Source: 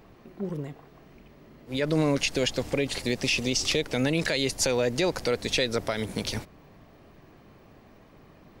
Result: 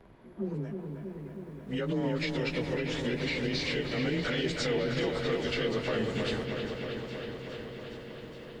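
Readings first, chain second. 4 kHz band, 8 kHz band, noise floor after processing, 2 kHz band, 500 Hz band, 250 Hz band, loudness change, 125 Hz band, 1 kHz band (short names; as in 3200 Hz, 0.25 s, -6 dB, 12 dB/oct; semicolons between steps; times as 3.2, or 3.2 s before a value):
-6.5 dB, -16.0 dB, -47 dBFS, -3.5 dB, -3.5 dB, -2.5 dB, -5.5 dB, -2.0 dB, -3.5 dB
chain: inharmonic rescaling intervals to 92%; high shelf 6100 Hz -10.5 dB; limiter -24 dBFS, peak gain reduction 8.5 dB; dark delay 0.318 s, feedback 76%, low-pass 3200 Hz, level -5 dB; lo-fi delay 0.414 s, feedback 80%, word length 10-bit, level -14.5 dB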